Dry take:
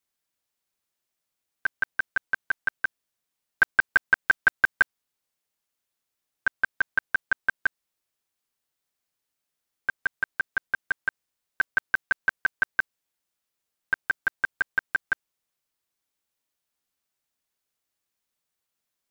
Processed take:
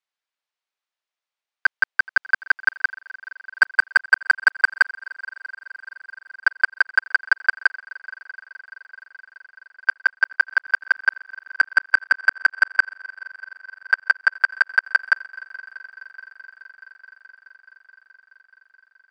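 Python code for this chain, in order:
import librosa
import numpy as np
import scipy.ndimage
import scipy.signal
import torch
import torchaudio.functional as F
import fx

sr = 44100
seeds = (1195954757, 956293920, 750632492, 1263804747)

y = fx.leveller(x, sr, passes=2)
y = fx.bandpass_edges(y, sr, low_hz=680.0, high_hz=4200.0)
y = fx.echo_heads(y, sr, ms=213, heads='second and third', feedback_pct=71, wet_db=-23.0)
y = y * librosa.db_to_amplitude(4.0)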